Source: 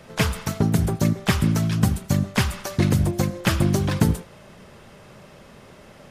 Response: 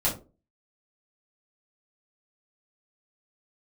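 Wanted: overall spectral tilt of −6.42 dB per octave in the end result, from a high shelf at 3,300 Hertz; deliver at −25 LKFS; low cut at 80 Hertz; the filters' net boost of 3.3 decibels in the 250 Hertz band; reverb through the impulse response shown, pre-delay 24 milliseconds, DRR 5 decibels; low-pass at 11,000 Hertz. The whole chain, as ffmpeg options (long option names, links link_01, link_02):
-filter_complex "[0:a]highpass=80,lowpass=11000,equalizer=frequency=250:width_type=o:gain=5,highshelf=frequency=3300:gain=3,asplit=2[link_01][link_02];[1:a]atrim=start_sample=2205,adelay=24[link_03];[link_02][link_03]afir=irnorm=-1:irlink=0,volume=-15dB[link_04];[link_01][link_04]amix=inputs=2:normalize=0,volume=-5.5dB"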